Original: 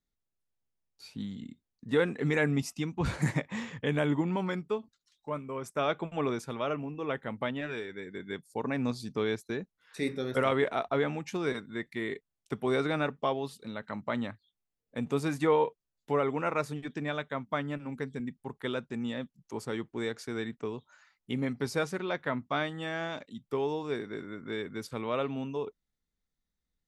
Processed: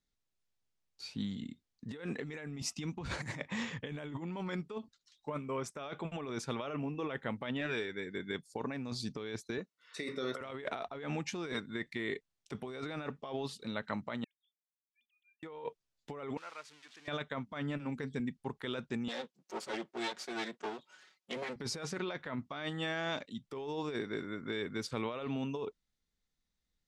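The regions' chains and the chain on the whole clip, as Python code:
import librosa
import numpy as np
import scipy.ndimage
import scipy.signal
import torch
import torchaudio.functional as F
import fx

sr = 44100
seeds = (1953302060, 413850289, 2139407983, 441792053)

y = fx.chain(x, sr, fx.highpass(hz=300.0, slope=6),
    fx.dynamic_eq(hz=1100.0, q=1.1, threshold_db=-52.0, ratio=4.0, max_db=5),
    fx.notch_comb(f0_hz=820.0), at=(9.58, 10.41))
y = fx.chain(y, sr, fx.sine_speech(),
    fx.cheby2_highpass(hz=1100.0, order=4, stop_db=70), at=(14.24, 15.43))
y = fx.chain(y, sr, fx.crossing_spikes(level_db=-23.0),
    fx.lowpass(hz=1600.0, slope=12),
    fx.differentiator(), at=(16.37, 17.08))
y = fx.chain(y, sr, fx.lower_of_two(delay_ms=5.4),
    fx.highpass(hz=290.0, slope=12), at=(19.08, 21.56))
y = scipy.signal.sosfilt(scipy.signal.butter(2, 5800.0, 'lowpass', fs=sr, output='sos'), y)
y = fx.high_shelf(y, sr, hz=3600.0, db=9.0)
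y = fx.over_compress(y, sr, threshold_db=-35.0, ratio=-1.0)
y = F.gain(torch.from_numpy(y), -3.5).numpy()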